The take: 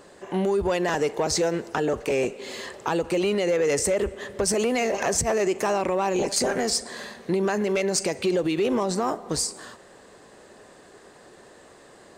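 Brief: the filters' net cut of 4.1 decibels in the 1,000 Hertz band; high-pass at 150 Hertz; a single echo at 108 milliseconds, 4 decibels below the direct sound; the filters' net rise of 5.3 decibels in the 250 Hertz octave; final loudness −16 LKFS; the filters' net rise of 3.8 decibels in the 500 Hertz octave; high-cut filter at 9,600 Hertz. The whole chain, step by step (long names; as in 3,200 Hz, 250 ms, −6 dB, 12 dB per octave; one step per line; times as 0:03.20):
high-pass filter 150 Hz
low-pass filter 9,600 Hz
parametric band 250 Hz +7.5 dB
parametric band 500 Hz +4 dB
parametric band 1,000 Hz −8.5 dB
single-tap delay 108 ms −4 dB
level +4.5 dB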